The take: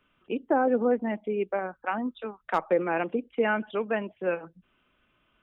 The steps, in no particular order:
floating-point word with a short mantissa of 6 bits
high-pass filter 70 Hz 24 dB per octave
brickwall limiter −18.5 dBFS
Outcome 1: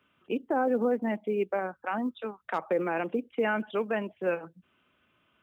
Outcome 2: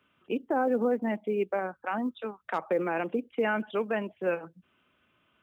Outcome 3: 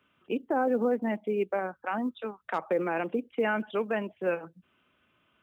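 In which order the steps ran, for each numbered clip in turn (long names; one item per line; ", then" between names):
high-pass filter, then brickwall limiter, then floating-point word with a short mantissa
high-pass filter, then floating-point word with a short mantissa, then brickwall limiter
floating-point word with a short mantissa, then high-pass filter, then brickwall limiter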